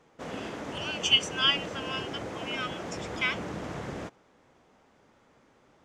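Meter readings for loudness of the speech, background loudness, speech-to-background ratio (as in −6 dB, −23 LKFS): −28.5 LKFS, −38.0 LKFS, 9.5 dB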